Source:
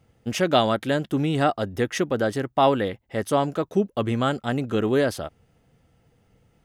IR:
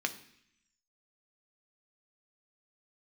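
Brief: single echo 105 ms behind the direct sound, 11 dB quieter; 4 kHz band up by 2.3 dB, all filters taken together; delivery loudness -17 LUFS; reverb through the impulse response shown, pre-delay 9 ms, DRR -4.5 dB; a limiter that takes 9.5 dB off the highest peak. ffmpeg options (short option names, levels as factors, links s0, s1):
-filter_complex "[0:a]equalizer=f=4000:t=o:g=3,alimiter=limit=0.224:level=0:latency=1,aecho=1:1:105:0.282,asplit=2[s0][s1];[1:a]atrim=start_sample=2205,adelay=9[s2];[s1][s2]afir=irnorm=-1:irlink=0,volume=0.944[s3];[s0][s3]amix=inputs=2:normalize=0,volume=1.5"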